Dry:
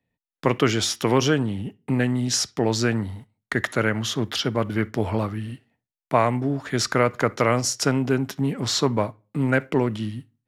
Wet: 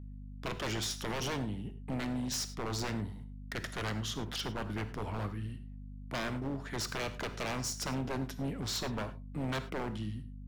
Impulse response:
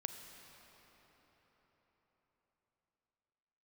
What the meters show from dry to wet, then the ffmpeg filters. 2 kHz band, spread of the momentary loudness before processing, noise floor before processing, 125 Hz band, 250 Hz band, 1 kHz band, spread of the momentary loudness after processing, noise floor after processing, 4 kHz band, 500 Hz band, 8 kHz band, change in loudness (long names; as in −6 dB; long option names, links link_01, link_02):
−13.0 dB, 8 LU, below −85 dBFS, −12.5 dB, −14.0 dB, −14.0 dB, 7 LU, −46 dBFS, −11.0 dB, −17.0 dB, −12.0 dB, −13.5 dB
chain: -filter_complex "[0:a]aeval=exprs='val(0)+0.0224*(sin(2*PI*50*n/s)+sin(2*PI*2*50*n/s)/2+sin(2*PI*3*50*n/s)/3+sin(2*PI*4*50*n/s)/4+sin(2*PI*5*50*n/s)/5)':channel_layout=same,aeval=exprs='0.119*(abs(mod(val(0)/0.119+3,4)-2)-1)':channel_layout=same[link_01];[1:a]atrim=start_sample=2205,afade=type=out:start_time=0.16:duration=0.01,atrim=end_sample=7497[link_02];[link_01][link_02]afir=irnorm=-1:irlink=0,volume=-8.5dB"